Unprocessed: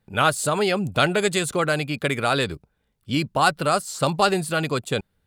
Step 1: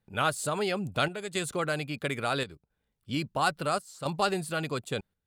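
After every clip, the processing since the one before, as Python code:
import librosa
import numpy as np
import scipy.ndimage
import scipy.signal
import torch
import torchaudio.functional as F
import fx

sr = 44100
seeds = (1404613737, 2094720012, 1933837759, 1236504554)

y = fx.chopper(x, sr, hz=0.74, depth_pct=60, duty_pct=80)
y = F.gain(torch.from_numpy(y), -8.0).numpy()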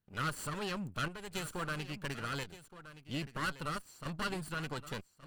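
y = fx.lower_of_two(x, sr, delay_ms=0.68)
y = y + 10.0 ** (-14.5 / 20.0) * np.pad(y, (int(1171 * sr / 1000.0), 0))[:len(y)]
y = F.gain(torch.from_numpy(y), -6.5).numpy()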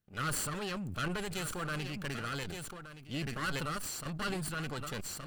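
y = fx.notch(x, sr, hz=970.0, q=11.0)
y = fx.sustainer(y, sr, db_per_s=22.0)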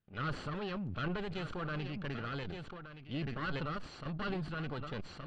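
y = scipy.signal.sosfilt(scipy.signal.butter(4, 3800.0, 'lowpass', fs=sr, output='sos'), x)
y = fx.dynamic_eq(y, sr, hz=2300.0, q=0.74, threshold_db=-52.0, ratio=4.0, max_db=-5)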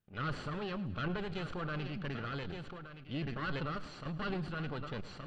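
y = fx.echo_feedback(x, sr, ms=107, feedback_pct=56, wet_db=-16.5)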